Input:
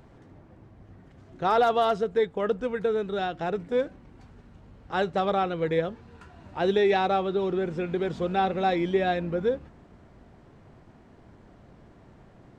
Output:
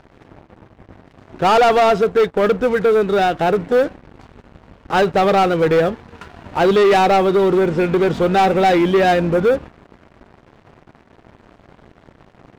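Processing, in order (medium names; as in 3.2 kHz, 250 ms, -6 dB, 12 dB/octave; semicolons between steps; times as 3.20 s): tone controls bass -4 dB, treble -7 dB; waveshaping leveller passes 3; trim +4.5 dB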